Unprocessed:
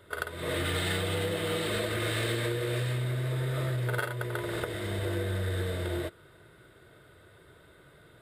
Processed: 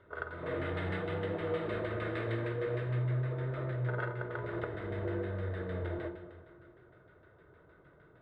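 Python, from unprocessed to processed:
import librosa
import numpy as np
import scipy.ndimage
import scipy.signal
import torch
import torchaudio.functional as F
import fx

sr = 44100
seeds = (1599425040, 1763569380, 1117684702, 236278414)

y = fx.rev_plate(x, sr, seeds[0], rt60_s=1.8, hf_ratio=1.0, predelay_ms=0, drr_db=5.5)
y = fx.filter_lfo_lowpass(y, sr, shape='saw_down', hz=6.5, low_hz=940.0, high_hz=2000.0, q=0.96)
y = F.gain(torch.from_numpy(y), -5.0).numpy()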